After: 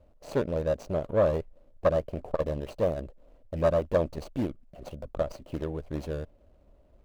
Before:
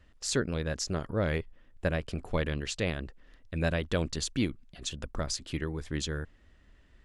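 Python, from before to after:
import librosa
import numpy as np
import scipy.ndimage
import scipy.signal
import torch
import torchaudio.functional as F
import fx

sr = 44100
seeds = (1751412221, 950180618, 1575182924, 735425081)

y = scipy.ndimage.median_filter(x, 25, mode='constant')
y = fx.peak_eq(y, sr, hz=590.0, db=14.5, octaves=0.62)
y = fx.transformer_sat(y, sr, knee_hz=570.0)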